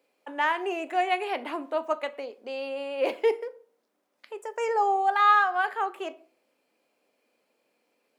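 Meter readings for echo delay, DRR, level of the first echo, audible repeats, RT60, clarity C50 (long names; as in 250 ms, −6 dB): no echo audible, 11.0 dB, no echo audible, no echo audible, 0.45 s, 19.0 dB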